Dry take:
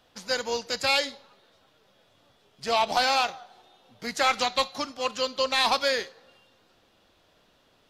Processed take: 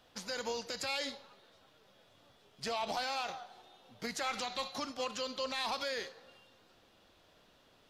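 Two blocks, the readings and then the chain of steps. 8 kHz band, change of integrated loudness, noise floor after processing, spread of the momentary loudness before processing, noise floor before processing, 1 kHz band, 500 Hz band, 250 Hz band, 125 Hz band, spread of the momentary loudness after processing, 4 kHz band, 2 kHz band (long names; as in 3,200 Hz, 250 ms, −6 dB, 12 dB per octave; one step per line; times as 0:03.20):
−8.5 dB, −12.0 dB, −66 dBFS, 11 LU, −64 dBFS, −12.5 dB, −11.0 dB, −7.0 dB, −6.0 dB, 9 LU, −11.5 dB, −12.0 dB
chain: brickwall limiter −25 dBFS, peak gain reduction 11.5 dB
level −2 dB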